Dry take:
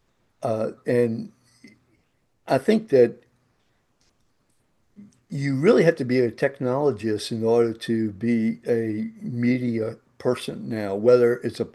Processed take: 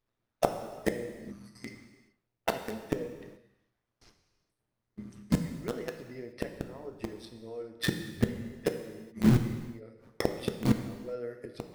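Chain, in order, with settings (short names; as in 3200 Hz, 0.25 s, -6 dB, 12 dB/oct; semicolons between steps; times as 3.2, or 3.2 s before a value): notches 50/100/150/200/250/300 Hz; gate with hold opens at -47 dBFS; bell 7200 Hz -7.5 dB 0.38 oct; flipped gate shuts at -22 dBFS, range -28 dB; AM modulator 120 Hz, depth 40%; in parallel at -3.5 dB: bit-crush 6-bit; on the sum: non-linear reverb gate 0.45 s falling, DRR 6 dB; gain +7.5 dB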